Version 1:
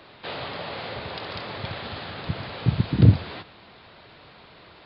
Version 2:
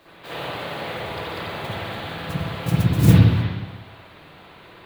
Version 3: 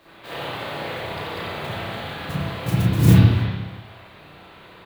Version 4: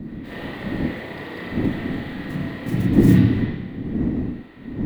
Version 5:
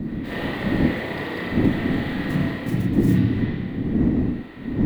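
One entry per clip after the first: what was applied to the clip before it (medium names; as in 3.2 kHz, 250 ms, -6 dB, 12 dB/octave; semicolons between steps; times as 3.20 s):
modulation noise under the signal 13 dB; reverberation RT60 1.2 s, pre-delay 54 ms, DRR -9.5 dB; trim -6 dB
doubling 33 ms -4.5 dB; trim -1 dB
wind noise 190 Hz -25 dBFS; small resonant body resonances 260/1900 Hz, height 16 dB, ringing for 25 ms; trim -8.5 dB
gain riding within 5 dB 0.5 s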